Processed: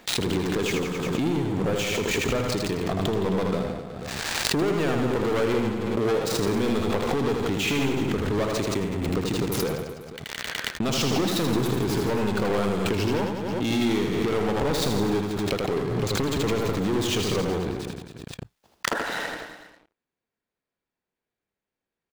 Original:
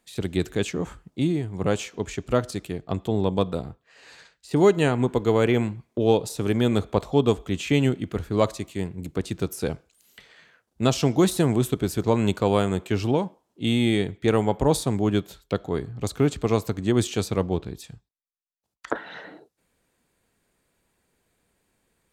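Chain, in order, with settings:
running median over 5 samples
low-shelf EQ 140 Hz −8 dB
leveller curve on the samples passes 5
downward compressor, threshold −17 dBFS, peak gain reduction 8.5 dB
on a send: reverse bouncing-ball delay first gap 80 ms, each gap 1.1×, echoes 5
on the sum: background raised ahead of every attack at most 22 dB per second
level −8 dB

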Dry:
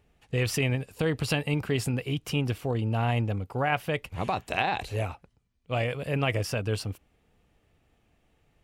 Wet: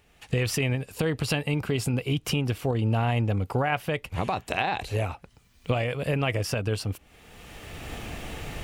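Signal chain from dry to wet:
camcorder AGC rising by 25 dB per second
0:01.66–0:02.13: notch filter 1,800 Hz, Q 7.1
one half of a high-frequency compander encoder only

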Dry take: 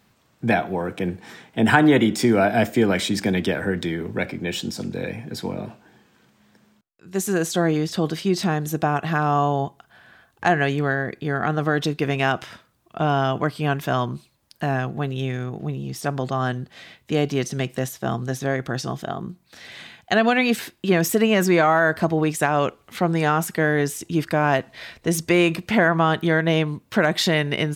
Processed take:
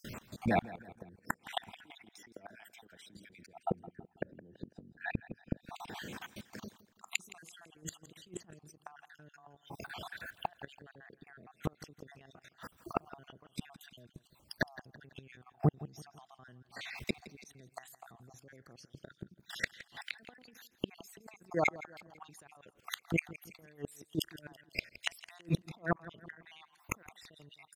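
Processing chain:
time-frequency cells dropped at random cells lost 57%
output level in coarse steps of 22 dB
brickwall limiter −19.5 dBFS, peak gain reduction 9.5 dB
compressor whose output falls as the input rises −38 dBFS, ratio −1
0:03.46–0:05.56: moving average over 40 samples
gate with flip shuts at −33 dBFS, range −33 dB
repeating echo 166 ms, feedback 42%, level −17.5 dB
level +15.5 dB

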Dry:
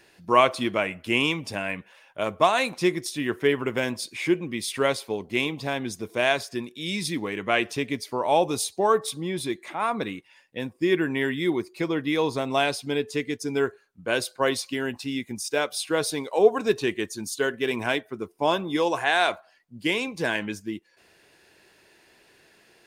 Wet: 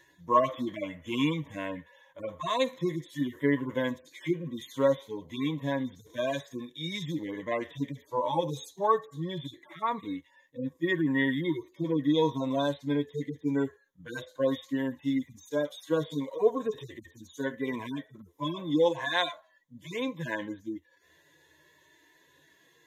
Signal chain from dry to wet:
harmonic-percussive split with one part muted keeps harmonic
EQ curve with evenly spaced ripples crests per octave 1.1, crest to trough 13 dB
level −3.5 dB

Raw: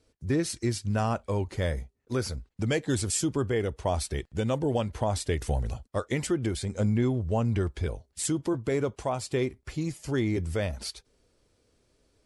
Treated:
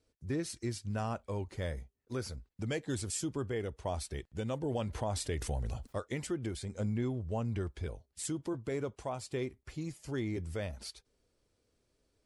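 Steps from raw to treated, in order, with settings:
0:04.63–0:05.98: envelope flattener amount 50%
level −8.5 dB

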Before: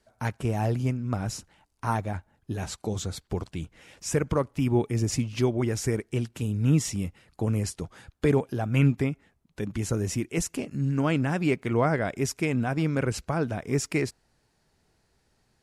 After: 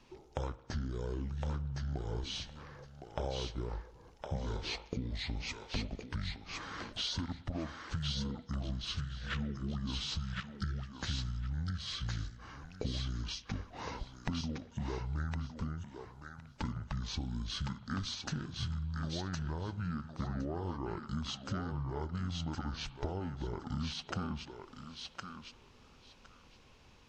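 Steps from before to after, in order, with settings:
healed spectral selection 0:05.88–0:06.26, 360–2,100 Hz both
wrong playback speed 78 rpm record played at 45 rpm
downward compressor 16 to 1, threshold −42 dBFS, peak gain reduction 26 dB
feedback echo with a high-pass in the loop 1,062 ms, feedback 17%, high-pass 500 Hz, level −3 dB
spring reverb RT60 1.1 s, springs 54 ms, chirp 30 ms, DRR 17 dB
level +7.5 dB

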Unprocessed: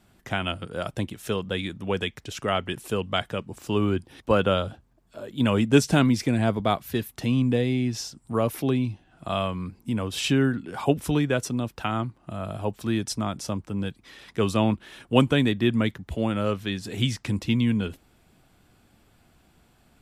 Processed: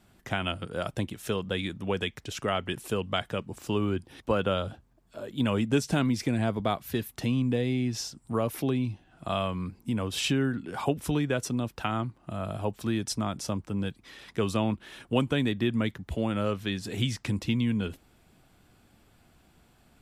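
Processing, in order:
downward compressor 2 to 1, threshold −24 dBFS, peak gain reduction 7.5 dB
level −1 dB

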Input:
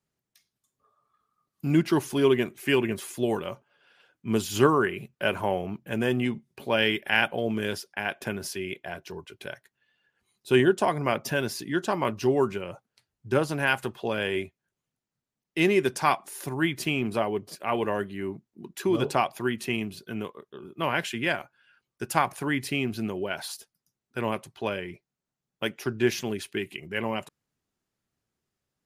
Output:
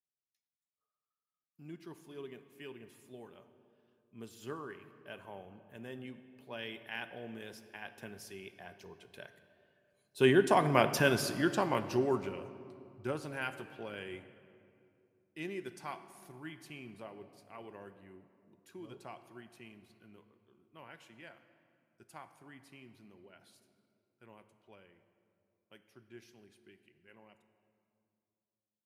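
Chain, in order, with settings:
source passing by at 0:10.95, 10 m/s, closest 4.9 metres
on a send: convolution reverb RT60 2.6 s, pre-delay 14 ms, DRR 10.5 dB

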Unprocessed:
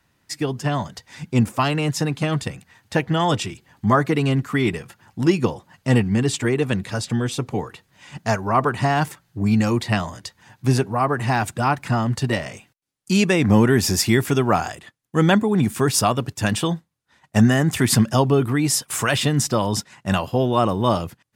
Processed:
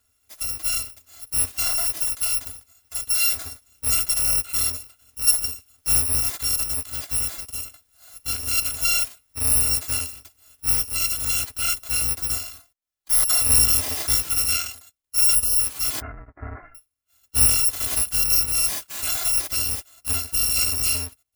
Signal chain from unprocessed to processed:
samples in bit-reversed order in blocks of 256 samples
0:16.00–0:16.75: Butterworth low-pass 2,000 Hz 72 dB per octave
harmonic and percussive parts rebalanced percussive −14 dB

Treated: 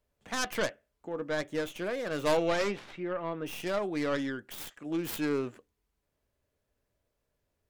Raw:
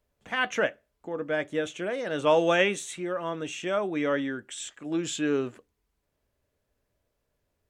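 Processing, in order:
stylus tracing distortion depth 0.48 ms
0:02.36–0:03.45: low-pass filter 4,200 Hz → 2,100 Hz 12 dB per octave
in parallel at −3 dB: brickwall limiter −22 dBFS, peak gain reduction 11 dB
on the sum: level −7.5 dB

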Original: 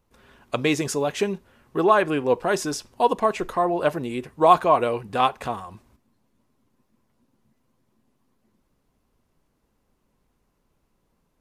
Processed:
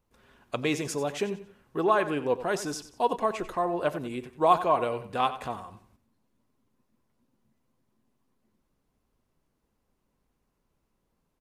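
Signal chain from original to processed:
repeating echo 92 ms, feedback 32%, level −13.5 dB
level −6 dB

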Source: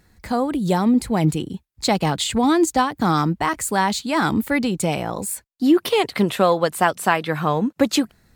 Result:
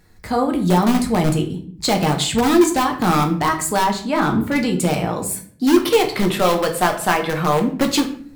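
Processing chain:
in parallel at −7.5 dB: wrap-around overflow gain 11.5 dB
0:03.84–0:04.56: on the sum: high-shelf EQ 3,200 Hz −10 dB
rectangular room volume 59 cubic metres, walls mixed, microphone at 0.49 metres
level −2 dB

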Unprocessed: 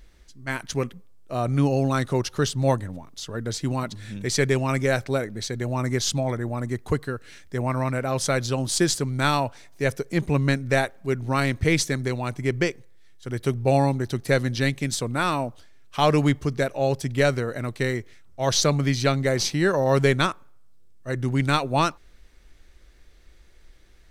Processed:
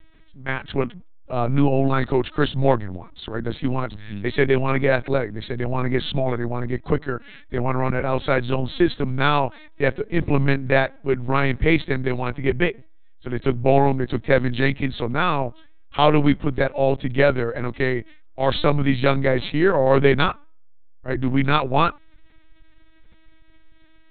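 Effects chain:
linear-prediction vocoder at 8 kHz pitch kept
level +4 dB

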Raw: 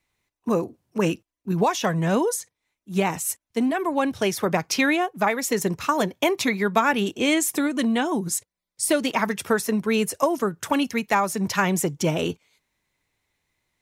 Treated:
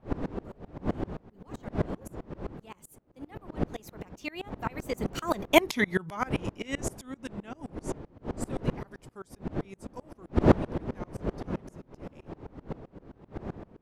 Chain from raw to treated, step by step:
source passing by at 0:05.58, 39 m/s, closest 7.4 metres
wind on the microphone 370 Hz −34 dBFS
tremolo with a ramp in dB swelling 7.7 Hz, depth 27 dB
level +7 dB

